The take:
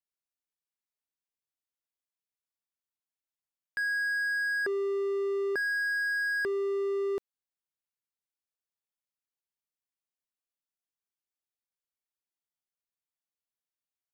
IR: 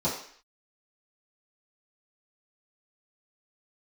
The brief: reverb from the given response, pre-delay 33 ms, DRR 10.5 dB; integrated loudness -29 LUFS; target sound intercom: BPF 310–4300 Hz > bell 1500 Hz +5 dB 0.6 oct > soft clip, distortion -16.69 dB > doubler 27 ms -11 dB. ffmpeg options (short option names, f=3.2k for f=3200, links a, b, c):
-filter_complex "[0:a]asplit=2[a][b];[1:a]atrim=start_sample=2205,adelay=33[c];[b][c]afir=irnorm=-1:irlink=0,volume=-20.5dB[d];[a][d]amix=inputs=2:normalize=0,highpass=310,lowpass=4.3k,equalizer=f=1.5k:t=o:w=0.6:g=5,asoftclip=threshold=-26dB,asplit=2[e][f];[f]adelay=27,volume=-11dB[g];[e][g]amix=inputs=2:normalize=0,volume=4dB"